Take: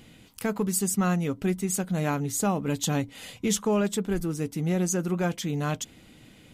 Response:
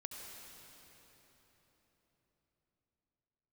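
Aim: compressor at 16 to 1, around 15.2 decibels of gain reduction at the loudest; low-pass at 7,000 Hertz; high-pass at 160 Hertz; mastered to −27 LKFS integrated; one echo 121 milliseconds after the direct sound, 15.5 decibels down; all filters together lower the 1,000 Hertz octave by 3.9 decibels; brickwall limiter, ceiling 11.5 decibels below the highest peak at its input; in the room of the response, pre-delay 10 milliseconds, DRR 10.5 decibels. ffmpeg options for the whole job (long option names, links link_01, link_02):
-filter_complex "[0:a]highpass=160,lowpass=7000,equalizer=frequency=1000:width_type=o:gain=-5.5,acompressor=threshold=-38dB:ratio=16,alimiter=level_in=10.5dB:limit=-24dB:level=0:latency=1,volume=-10.5dB,aecho=1:1:121:0.168,asplit=2[link_01][link_02];[1:a]atrim=start_sample=2205,adelay=10[link_03];[link_02][link_03]afir=irnorm=-1:irlink=0,volume=-8dB[link_04];[link_01][link_04]amix=inputs=2:normalize=0,volume=16.5dB"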